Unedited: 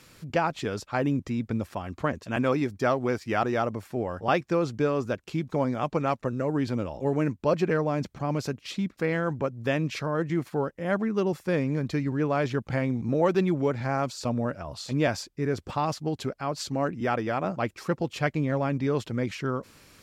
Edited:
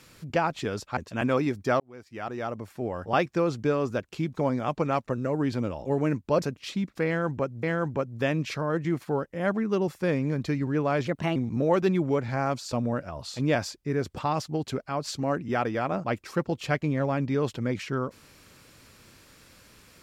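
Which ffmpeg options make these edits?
-filter_complex "[0:a]asplit=7[a][b][c][d][e][f][g];[a]atrim=end=0.972[h];[b]atrim=start=2.118:end=2.95,asetpts=PTS-STARTPTS,afade=t=out:st=0.828:d=0.004:c=hsin[i];[c]atrim=start=2.95:end=7.572,asetpts=PTS-STARTPTS,afade=t=in:d=1.29[j];[d]atrim=start=8.438:end=9.652[k];[e]atrim=start=9.078:end=12.524[l];[f]atrim=start=12.52:end=12.88,asetpts=PTS-STARTPTS,asetrate=55125,aresample=44100[m];[g]atrim=start=12.876[n];[i][j]concat=n=2:v=0:a=1[o];[h][o]acrossfade=d=0.004:c1=hsin:c2=hsin[p];[p][k]acrossfade=d=0.004:c1=hsin:c2=hsin[q];[q][l]acrossfade=d=0.004:c1=hsin:c2=hsin[r];[r][m]acrossfade=d=0.004:c1=hsin:c2=hsin[s];[s][n]acrossfade=d=0.004:c1=hsin:c2=hsin"

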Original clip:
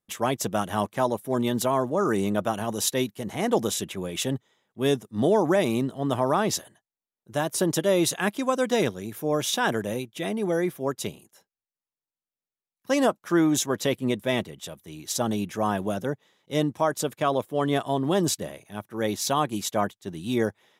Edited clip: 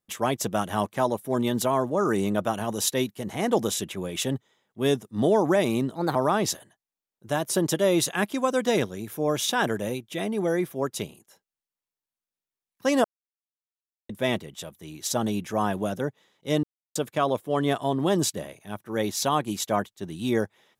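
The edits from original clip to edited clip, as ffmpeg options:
-filter_complex "[0:a]asplit=7[a][b][c][d][e][f][g];[a]atrim=end=5.954[h];[b]atrim=start=5.95:end=6.2,asetpts=PTS-STARTPTS,asetrate=54243,aresample=44100,atrim=end_sample=8963,asetpts=PTS-STARTPTS[i];[c]atrim=start=6.196:end=13.09,asetpts=PTS-STARTPTS,afade=t=out:st=6.89:d=0.004:c=hsin[j];[d]atrim=start=13.09:end=14.14,asetpts=PTS-STARTPTS,volume=0[k];[e]atrim=start=14.14:end=16.68,asetpts=PTS-STARTPTS,afade=t=in:d=0.004:c=hsin,afade=t=out:st=2.536:d=0.004:c=hsin[l];[f]atrim=start=16.68:end=17,asetpts=PTS-STARTPTS,volume=0[m];[g]atrim=start=17,asetpts=PTS-STARTPTS,afade=t=in:d=0.004:c=hsin[n];[h][i]acrossfade=d=0.004:c1=hsin:c2=hsin[o];[j][k][l][m][n]concat=n=5:v=0:a=1[p];[o][p]acrossfade=d=0.004:c1=hsin:c2=hsin"

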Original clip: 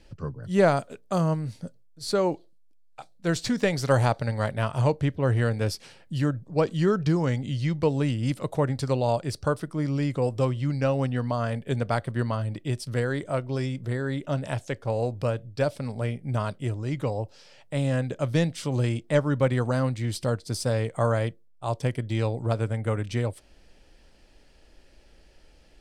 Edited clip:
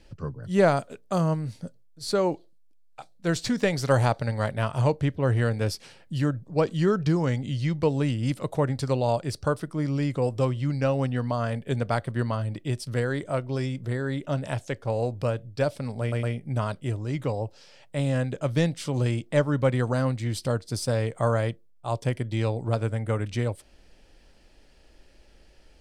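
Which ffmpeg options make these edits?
-filter_complex "[0:a]asplit=3[a][b][c];[a]atrim=end=16.122[d];[b]atrim=start=16.008:end=16.122[e];[c]atrim=start=16.008[f];[d][e]acrossfade=d=0.004:c1=hsin:c2=hsin[g];[g][f]acrossfade=d=0.004:c1=hsin:c2=hsin"

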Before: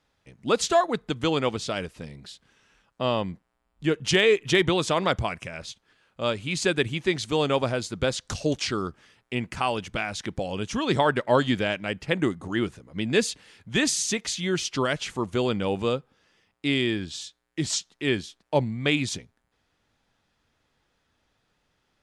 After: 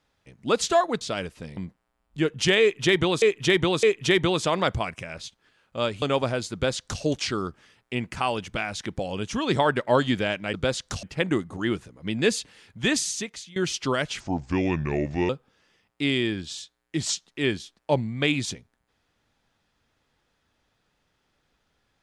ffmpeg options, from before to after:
-filter_complex "[0:a]asplit=11[a][b][c][d][e][f][g][h][i][j][k];[a]atrim=end=1.012[l];[b]atrim=start=1.598:end=2.162[m];[c]atrim=start=3.228:end=4.882[n];[d]atrim=start=4.268:end=4.882[o];[e]atrim=start=4.268:end=6.462[p];[f]atrim=start=7.418:end=11.942[q];[g]atrim=start=7.928:end=8.422[r];[h]atrim=start=11.938:end=14.47,asetpts=PTS-STARTPTS,afade=t=out:st=1.882:d=0.65:silence=0.0891251[s];[i]atrim=start=14.47:end=15.114,asetpts=PTS-STARTPTS,afade=t=in:d=0.004:c=hsin:silence=0.0891251[t];[j]atrim=start=15.11:end=15.93,asetpts=PTS-STARTPTS,asetrate=33075,aresample=44100[u];[k]atrim=start=15.926[v];[l][m]acrossfade=d=0.004:c1=hsin:c2=hsin[w];[w][n]acrossfade=d=0.004:c1=hsin:c2=hsin[x];[x][o]acrossfade=d=0.004:c1=hsin:c2=hsin[y];[y][p]acrossfade=d=0.004:c1=hsin:c2=hsin[z];[z][q]acrossfade=d=0.004:c1=hsin:c2=hsin[aa];[aa][r]acrossfade=d=0.004:c1=hsin:c2=hsin[ab];[s][t]concat=n=2:v=0:a=1[ac];[ab][ac]acrossfade=d=0.004:c1=hsin:c2=hsin[ad];[ad][u]acrossfade=d=0.004:c1=hsin:c2=hsin[ae];[ae][v]acrossfade=d=0.004:c1=hsin:c2=hsin"

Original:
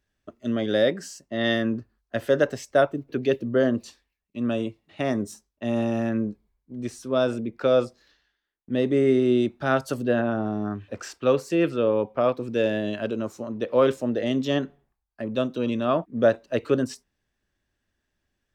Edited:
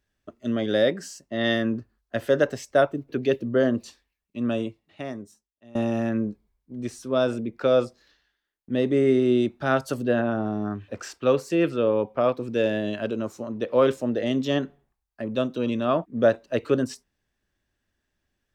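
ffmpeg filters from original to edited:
-filter_complex "[0:a]asplit=2[a][b];[a]atrim=end=5.75,asetpts=PTS-STARTPTS,afade=t=out:st=4.58:d=1.17:c=qua:silence=0.0749894[c];[b]atrim=start=5.75,asetpts=PTS-STARTPTS,afade=t=in:d=0.004:c=hsin:silence=0.0749894[d];[c][d]concat=n=2:v=0:a=1"

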